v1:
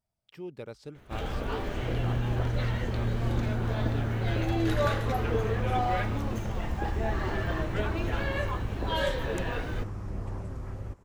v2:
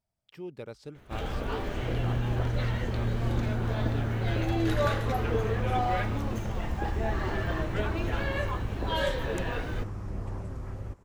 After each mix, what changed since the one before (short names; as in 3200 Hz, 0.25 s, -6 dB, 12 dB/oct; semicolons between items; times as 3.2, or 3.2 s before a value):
none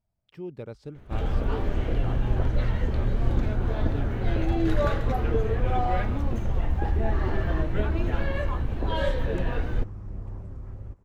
second sound -8.5 dB; master: add tilt -2 dB/oct